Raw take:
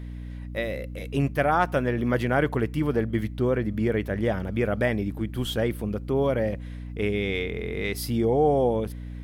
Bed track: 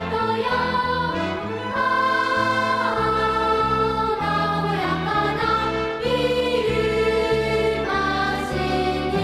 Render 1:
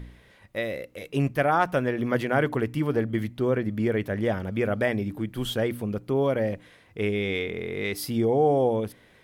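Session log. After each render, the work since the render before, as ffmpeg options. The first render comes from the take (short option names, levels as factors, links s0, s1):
-af "bandreject=f=60:t=h:w=4,bandreject=f=120:t=h:w=4,bandreject=f=180:t=h:w=4,bandreject=f=240:t=h:w=4,bandreject=f=300:t=h:w=4"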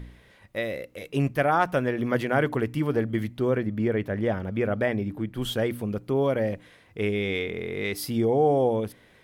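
-filter_complex "[0:a]asettb=1/sr,asplit=3[s0][s1][s2];[s0]atrim=end=3.654[s3];[s1]atrim=start=3.65:end=5.42,asetpts=PTS-STARTPTS,afade=t=in:d=0.004:c=qsin,afade=t=out:st=1.766:d=0.004:c=qsin,highshelf=f=3900:g=-8.5[s4];[s2]atrim=start=5.416[s5];[s3][s4]acrossfade=d=0.004:c1=hsin:c2=qsin[s6];[s6][s5]acrossfade=d=0.004:c1=qsin:c2=hsin"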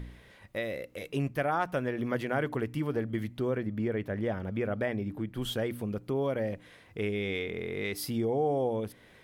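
-af "acompressor=threshold=0.0126:ratio=1.5"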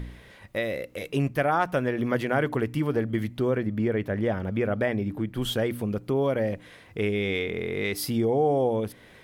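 -af "volume=1.88"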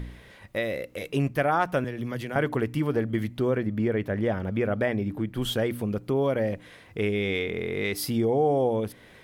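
-filter_complex "[0:a]asettb=1/sr,asplit=3[s0][s1][s2];[s0]atrim=end=1.844[s3];[s1]atrim=start=1.84:end=2.36,asetpts=PTS-STARTPTS,afade=t=in:d=0.004:c=qsin,afade=t=out:st=0.516:d=0.004:c=qsin,acrossover=split=170|3000[s4][s5][s6];[s5]acompressor=threshold=0.00398:ratio=1.5:attack=3.2:release=140:knee=2.83:detection=peak[s7];[s4][s7][s6]amix=inputs=3:normalize=0[s8];[s2]atrim=start=2.356[s9];[s3][s8]acrossfade=d=0.004:c1=hsin:c2=qsin[s10];[s10][s9]acrossfade=d=0.004:c1=qsin:c2=hsin"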